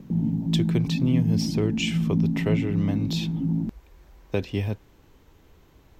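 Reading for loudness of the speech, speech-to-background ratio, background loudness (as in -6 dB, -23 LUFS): -29.0 LUFS, -3.0 dB, -26.0 LUFS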